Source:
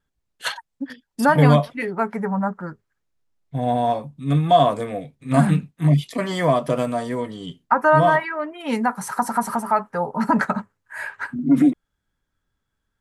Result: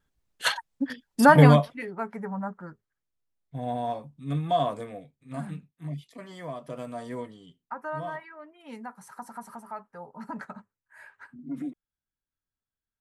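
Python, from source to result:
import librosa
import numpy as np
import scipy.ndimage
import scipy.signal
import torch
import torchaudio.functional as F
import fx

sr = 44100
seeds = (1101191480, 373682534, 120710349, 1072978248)

y = fx.gain(x, sr, db=fx.line((1.38, 1.0), (1.84, -10.0), (4.81, -10.0), (5.39, -19.0), (6.55, -19.0), (7.19, -9.0), (7.48, -19.0)))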